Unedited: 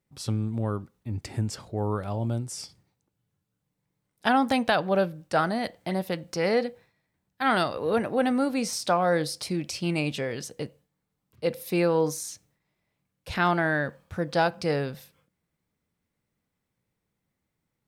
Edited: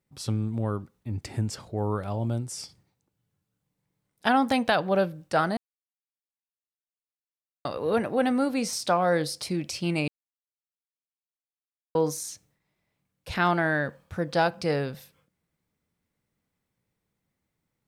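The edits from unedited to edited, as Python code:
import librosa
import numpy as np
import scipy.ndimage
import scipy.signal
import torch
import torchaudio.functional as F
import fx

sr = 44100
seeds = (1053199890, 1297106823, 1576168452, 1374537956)

y = fx.edit(x, sr, fx.silence(start_s=5.57, length_s=2.08),
    fx.silence(start_s=10.08, length_s=1.87), tone=tone)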